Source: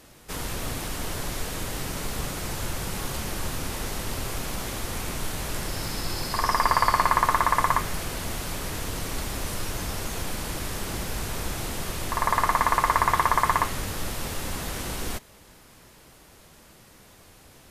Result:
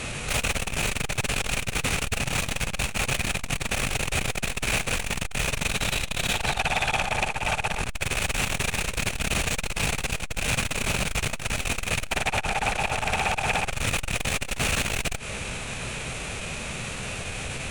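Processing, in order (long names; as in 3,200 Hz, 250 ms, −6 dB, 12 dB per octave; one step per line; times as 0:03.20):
downward compressor 6 to 1, threshold −32 dBFS, peak gain reduction 15.5 dB
formants moved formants −5 semitones
sine wavefolder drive 17 dB, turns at −18.5 dBFS
thirty-one-band graphic EQ 125 Hz +4 dB, 315 Hz −9 dB, 1,000 Hz −4 dB, 2,500 Hz +11 dB, 5,000 Hz −6 dB, 12,500 Hz −6 dB
saturating transformer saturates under 140 Hz
level −1.5 dB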